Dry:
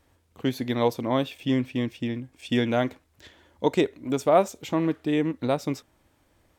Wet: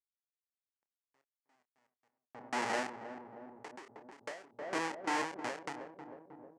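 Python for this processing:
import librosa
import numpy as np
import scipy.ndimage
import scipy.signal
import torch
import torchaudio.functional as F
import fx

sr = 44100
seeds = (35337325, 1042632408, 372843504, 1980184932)

p1 = fx.fade_in_head(x, sr, length_s=1.95)
p2 = fx.sample_hold(p1, sr, seeds[0], rate_hz=1100.0, jitter_pct=20)
p3 = p1 + F.gain(torch.from_numpy(p2), -11.5).numpy()
p4 = fx.env_flanger(p3, sr, rest_ms=10.7, full_db=-21.0)
p5 = fx.schmitt(p4, sr, flips_db=-23.5)
p6 = fx.cabinet(p5, sr, low_hz=480.0, low_slope=12, high_hz=8300.0, hz=(860.0, 1900.0, 3700.0), db=(7, 7, -6))
p7 = fx.doubler(p6, sr, ms=28.0, db=-12.0)
p8 = fx.echo_filtered(p7, sr, ms=314, feedback_pct=77, hz=810.0, wet_db=-9)
p9 = fx.end_taper(p8, sr, db_per_s=110.0)
y = F.gain(torch.from_numpy(p9), -1.5).numpy()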